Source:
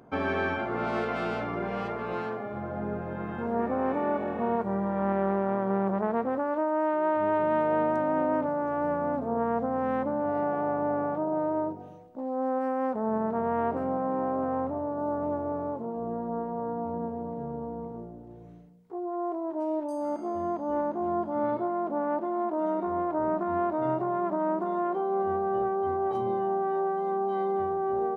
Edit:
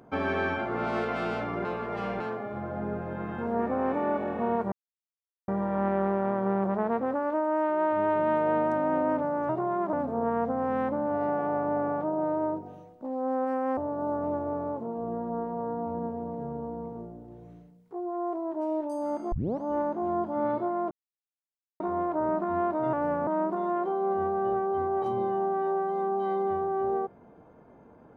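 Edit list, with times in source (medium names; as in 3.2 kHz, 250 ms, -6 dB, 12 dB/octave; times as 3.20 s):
1.65–2.20 s: reverse
4.72 s: insert silence 0.76 s
8.73–9.07 s: swap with 23.92–24.36 s
12.91–14.76 s: delete
20.31 s: tape start 0.29 s
21.90–22.79 s: mute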